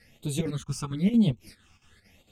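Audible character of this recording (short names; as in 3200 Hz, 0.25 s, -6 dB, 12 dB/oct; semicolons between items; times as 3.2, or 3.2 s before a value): phasing stages 8, 0.99 Hz, lowest notch 540–1700 Hz; chopped level 4.4 Hz, depth 65%, duty 75%; a shimmering, thickened sound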